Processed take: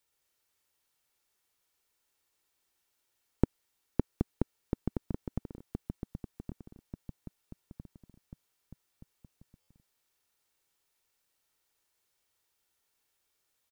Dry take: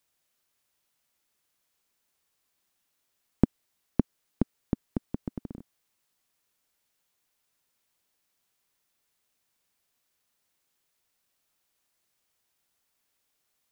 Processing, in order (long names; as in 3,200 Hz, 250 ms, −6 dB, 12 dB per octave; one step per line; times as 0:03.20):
comb filter 2.2 ms, depth 41%
delay with pitch and tempo change per echo 124 ms, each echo −3 semitones, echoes 3, each echo −6 dB
buffer that repeats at 0:09.60, samples 512, times 6
level −3.5 dB